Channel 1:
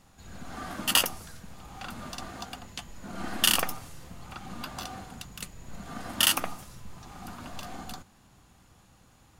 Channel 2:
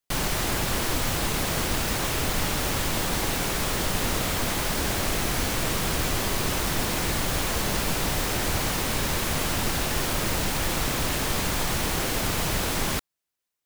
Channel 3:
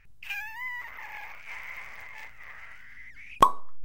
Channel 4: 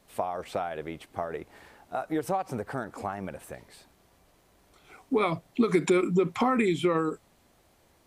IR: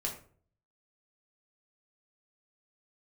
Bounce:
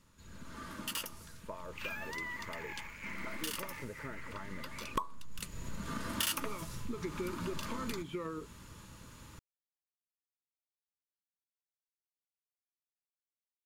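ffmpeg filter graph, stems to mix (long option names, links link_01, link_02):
-filter_complex "[0:a]aeval=exprs='0.596*sin(PI/2*3.16*val(0)/0.596)':channel_layout=same,volume=-7.5dB,afade=type=in:start_time=5.27:duration=0.38:silence=0.223872[link_01];[2:a]adelay=1550,volume=-3dB[link_02];[3:a]acrossover=split=3800[link_03][link_04];[link_04]acompressor=threshold=-56dB:ratio=4:attack=1:release=60[link_05];[link_03][link_05]amix=inputs=2:normalize=0,adelay=1300,volume=-9.5dB[link_06];[link_01][link_02][link_06]amix=inputs=3:normalize=0,asuperstop=centerf=750:order=20:qfactor=4.6,equalizer=frequency=600:width=5.8:gain=-4,acompressor=threshold=-38dB:ratio=2.5"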